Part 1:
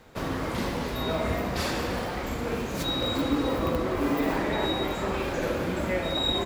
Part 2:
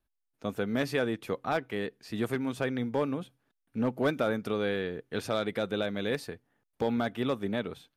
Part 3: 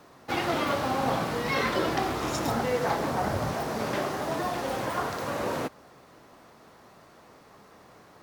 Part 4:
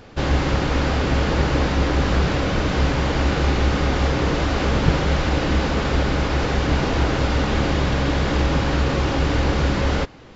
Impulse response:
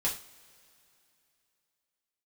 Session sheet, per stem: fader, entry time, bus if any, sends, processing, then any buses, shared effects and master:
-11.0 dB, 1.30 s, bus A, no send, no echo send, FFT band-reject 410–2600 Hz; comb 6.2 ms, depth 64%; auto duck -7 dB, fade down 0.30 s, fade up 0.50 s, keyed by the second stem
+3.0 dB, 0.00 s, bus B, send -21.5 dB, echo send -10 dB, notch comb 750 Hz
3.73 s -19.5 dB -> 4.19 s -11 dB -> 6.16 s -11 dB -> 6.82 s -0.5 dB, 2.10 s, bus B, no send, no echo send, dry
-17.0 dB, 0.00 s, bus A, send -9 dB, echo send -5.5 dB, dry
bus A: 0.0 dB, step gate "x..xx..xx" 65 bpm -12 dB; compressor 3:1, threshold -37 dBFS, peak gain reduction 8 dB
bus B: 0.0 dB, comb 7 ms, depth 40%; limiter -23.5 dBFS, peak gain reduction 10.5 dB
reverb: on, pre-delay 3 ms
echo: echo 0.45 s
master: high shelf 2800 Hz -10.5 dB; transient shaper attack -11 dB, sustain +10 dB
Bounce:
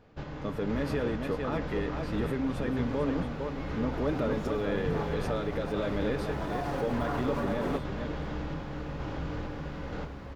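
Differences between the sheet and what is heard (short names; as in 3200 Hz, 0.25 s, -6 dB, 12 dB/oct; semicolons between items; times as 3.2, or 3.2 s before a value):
stem 1 -11.0 dB -> -18.0 dB; master: missing transient shaper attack -11 dB, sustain +10 dB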